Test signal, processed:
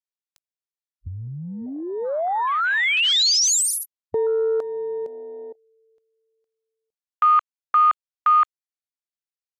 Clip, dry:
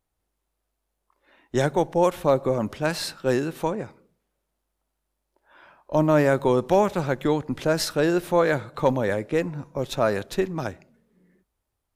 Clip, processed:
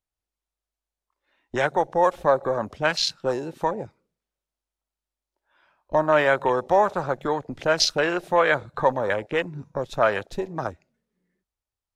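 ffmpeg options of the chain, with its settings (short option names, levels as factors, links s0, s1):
-filter_complex "[0:a]afwtdn=0.0282,equalizer=f=250:w=0.49:g=-4,acrossover=split=500|7000[s0][s1][s2];[s0]acompressor=threshold=0.0141:ratio=6[s3];[s1]crystalizer=i=2:c=0[s4];[s2]flanger=delay=19:depth=5.9:speed=2.6[s5];[s3][s4][s5]amix=inputs=3:normalize=0,volume=1.88"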